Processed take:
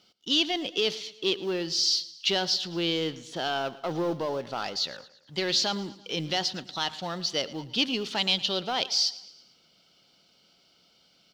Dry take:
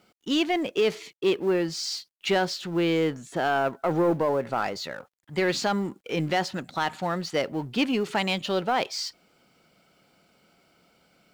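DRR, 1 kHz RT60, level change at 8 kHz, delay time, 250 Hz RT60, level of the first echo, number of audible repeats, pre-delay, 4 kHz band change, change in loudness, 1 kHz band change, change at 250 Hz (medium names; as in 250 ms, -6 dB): no reverb, no reverb, +4.0 dB, 112 ms, no reverb, -18.5 dB, 3, no reverb, +7.0 dB, -1.0 dB, -6.0 dB, -6.0 dB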